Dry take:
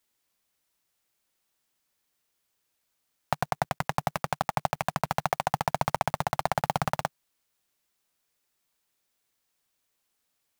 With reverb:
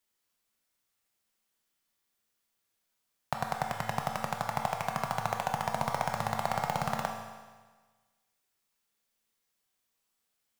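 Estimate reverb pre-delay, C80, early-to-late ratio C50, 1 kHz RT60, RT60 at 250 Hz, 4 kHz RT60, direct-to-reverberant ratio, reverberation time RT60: 18 ms, 6.0 dB, 4.5 dB, 1.4 s, 1.4 s, 1.4 s, 2.0 dB, 1.4 s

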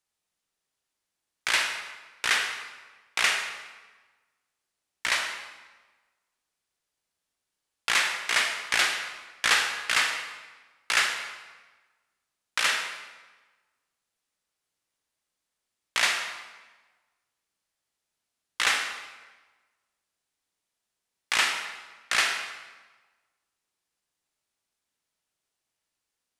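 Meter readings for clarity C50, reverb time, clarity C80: 5.0 dB, 1.3 s, 7.0 dB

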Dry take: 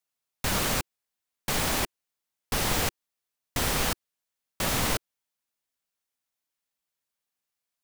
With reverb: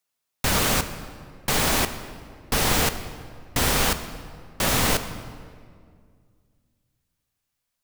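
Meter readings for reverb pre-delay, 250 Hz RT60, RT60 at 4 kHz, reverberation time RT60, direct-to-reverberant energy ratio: 3 ms, 2.5 s, 1.4 s, 2.1 s, 9.5 dB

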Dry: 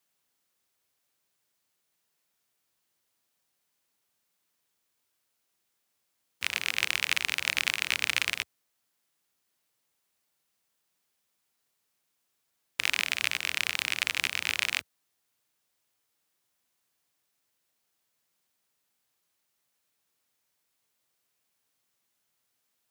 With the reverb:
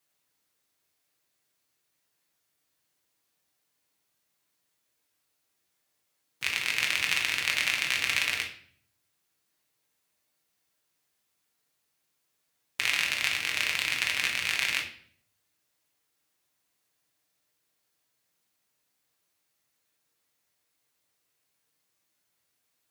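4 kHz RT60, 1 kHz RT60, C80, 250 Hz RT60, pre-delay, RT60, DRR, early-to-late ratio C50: 0.50 s, 0.50 s, 12.5 dB, 0.80 s, 6 ms, 0.60 s, 0.0 dB, 8.0 dB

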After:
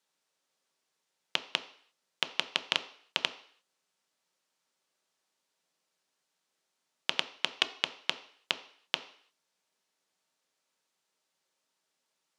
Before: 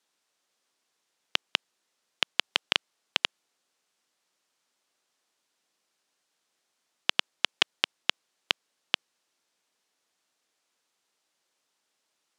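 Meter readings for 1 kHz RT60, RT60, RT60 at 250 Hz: 0.55 s, 0.55 s, 0.50 s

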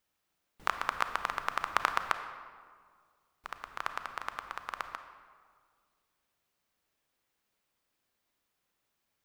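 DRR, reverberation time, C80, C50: 8.0 dB, 1.9 s, 10.0 dB, 9.0 dB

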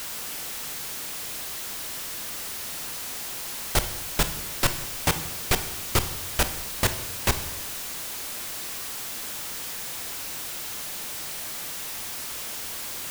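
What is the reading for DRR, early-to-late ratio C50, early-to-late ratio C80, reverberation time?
9.5 dB, 12.0 dB, 14.5 dB, 0.95 s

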